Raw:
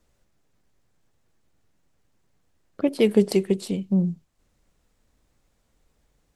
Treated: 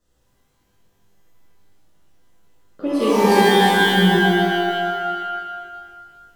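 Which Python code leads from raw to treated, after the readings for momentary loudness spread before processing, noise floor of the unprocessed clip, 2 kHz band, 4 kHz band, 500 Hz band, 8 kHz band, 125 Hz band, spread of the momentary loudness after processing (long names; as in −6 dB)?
8 LU, −70 dBFS, +23.5 dB, +17.5 dB, +6.5 dB, +10.0 dB, +5.5 dB, 16 LU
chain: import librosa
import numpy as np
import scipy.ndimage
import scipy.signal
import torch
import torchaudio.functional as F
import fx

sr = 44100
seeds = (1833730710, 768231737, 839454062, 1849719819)

y = fx.notch(x, sr, hz=2300.0, q=5.2)
y = y + 10.0 ** (-12.0 / 20.0) * np.pad(y, (int(245 * sr / 1000.0), 0))[:len(y)]
y = fx.rev_shimmer(y, sr, seeds[0], rt60_s=1.8, semitones=12, shimmer_db=-2, drr_db=-9.5)
y = F.gain(torch.from_numpy(y), -6.0).numpy()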